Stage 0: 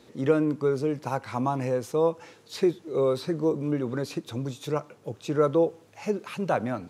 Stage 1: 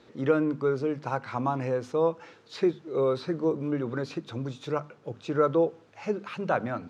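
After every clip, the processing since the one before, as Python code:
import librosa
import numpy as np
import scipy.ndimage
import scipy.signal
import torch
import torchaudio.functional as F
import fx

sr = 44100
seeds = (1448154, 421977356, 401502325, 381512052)

y = scipy.signal.sosfilt(scipy.signal.butter(2, 4800.0, 'lowpass', fs=sr, output='sos'), x)
y = fx.peak_eq(y, sr, hz=1400.0, db=4.5, octaves=0.53)
y = fx.hum_notches(y, sr, base_hz=50, count=5)
y = y * librosa.db_to_amplitude(-1.5)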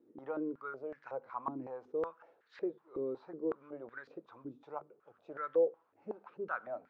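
y = fx.filter_held_bandpass(x, sr, hz=5.4, low_hz=310.0, high_hz=1700.0)
y = y * librosa.db_to_amplitude(-3.5)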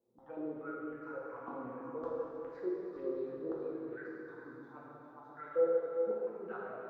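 y = x + 10.0 ** (-7.5 / 20.0) * np.pad(x, (int(410 * sr / 1000.0), 0))[:len(x)]
y = fx.env_phaser(y, sr, low_hz=290.0, high_hz=2300.0, full_db=-32.0)
y = fx.rev_plate(y, sr, seeds[0], rt60_s=2.9, hf_ratio=0.9, predelay_ms=0, drr_db=-6.5)
y = y * librosa.db_to_amplitude(-6.0)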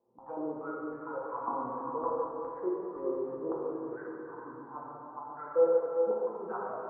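y = fx.lowpass_res(x, sr, hz=990.0, q=4.5)
y = y * librosa.db_to_amplitude(2.5)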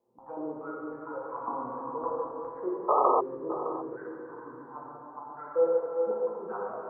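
y = fx.spec_paint(x, sr, seeds[1], shape='noise', start_s=2.88, length_s=0.33, low_hz=400.0, high_hz=1300.0, level_db=-23.0)
y = y + 10.0 ** (-13.5 / 20.0) * np.pad(y, (int(613 * sr / 1000.0), 0))[:len(y)]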